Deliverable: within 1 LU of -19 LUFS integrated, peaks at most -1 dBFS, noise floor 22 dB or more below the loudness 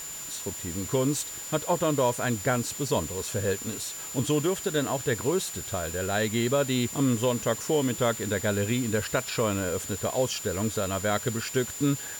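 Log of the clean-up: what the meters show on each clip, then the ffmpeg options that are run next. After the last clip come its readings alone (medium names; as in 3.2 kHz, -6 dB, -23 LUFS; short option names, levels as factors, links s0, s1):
steady tone 7.1 kHz; tone level -37 dBFS; noise floor -38 dBFS; noise floor target -50 dBFS; loudness -27.5 LUFS; peak level -13.0 dBFS; loudness target -19.0 LUFS
-> -af "bandreject=f=7100:w=30"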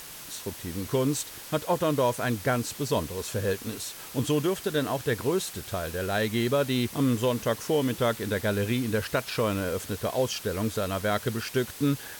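steady tone not found; noise floor -43 dBFS; noise floor target -51 dBFS
-> -af "afftdn=nr=8:nf=-43"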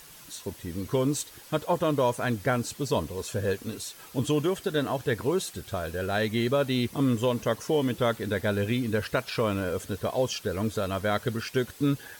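noise floor -49 dBFS; noise floor target -51 dBFS
-> -af "afftdn=nr=6:nf=-49"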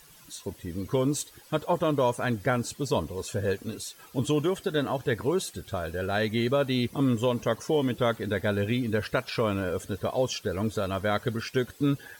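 noise floor -53 dBFS; loudness -28.5 LUFS; peak level -14.0 dBFS; loudness target -19.0 LUFS
-> -af "volume=2.99"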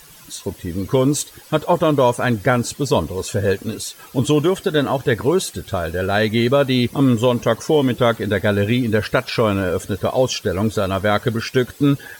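loudness -19.0 LUFS; peak level -4.5 dBFS; noise floor -44 dBFS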